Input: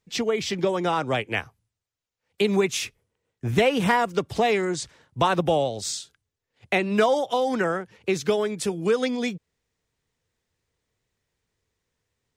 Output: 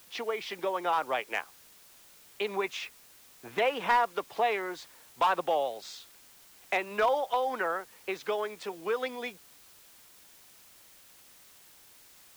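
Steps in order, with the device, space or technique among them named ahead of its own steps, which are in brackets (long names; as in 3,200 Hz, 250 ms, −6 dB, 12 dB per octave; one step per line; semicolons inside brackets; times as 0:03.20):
drive-through speaker (band-pass filter 520–3,200 Hz; parametric band 980 Hz +5 dB 0.77 octaves; hard clipping −14 dBFS, distortion −19 dB; white noise bed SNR 23 dB)
level −5 dB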